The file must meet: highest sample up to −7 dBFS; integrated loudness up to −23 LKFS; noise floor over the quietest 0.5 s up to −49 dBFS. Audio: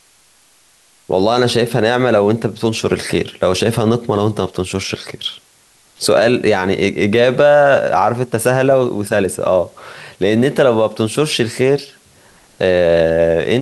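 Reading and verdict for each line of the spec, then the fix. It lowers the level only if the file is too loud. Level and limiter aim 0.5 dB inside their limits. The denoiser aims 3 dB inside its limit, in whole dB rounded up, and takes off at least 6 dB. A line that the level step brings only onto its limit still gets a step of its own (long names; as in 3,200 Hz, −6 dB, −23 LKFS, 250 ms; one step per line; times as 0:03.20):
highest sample −2.5 dBFS: out of spec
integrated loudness −15.0 LKFS: out of spec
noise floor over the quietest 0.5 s −52 dBFS: in spec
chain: level −8.5 dB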